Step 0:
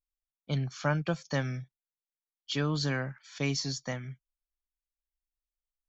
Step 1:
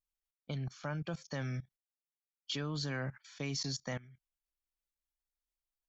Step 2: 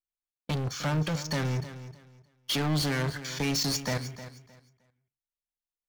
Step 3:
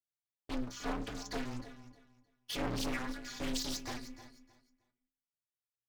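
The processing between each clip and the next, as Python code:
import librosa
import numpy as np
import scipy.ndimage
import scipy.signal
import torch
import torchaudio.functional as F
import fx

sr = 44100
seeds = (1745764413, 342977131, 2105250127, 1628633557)

y1 = fx.level_steps(x, sr, step_db=19)
y1 = F.gain(torch.from_numpy(y1), 1.0).numpy()
y2 = fx.leveller(y1, sr, passes=5)
y2 = fx.echo_feedback(y2, sr, ms=309, feedback_pct=23, wet_db=-13.5)
y2 = fx.rev_fdn(y2, sr, rt60_s=0.37, lf_ratio=1.0, hf_ratio=0.6, size_ms=20.0, drr_db=12.5)
y3 = fx.stiff_resonator(y2, sr, f0_hz=66.0, decay_s=0.44, stiffness=0.03)
y3 = y3 * np.sin(2.0 * np.pi * 120.0 * np.arange(len(y3)) / sr)
y3 = fx.doppler_dist(y3, sr, depth_ms=0.71)
y3 = F.gain(torch.from_numpy(y3), 3.5).numpy()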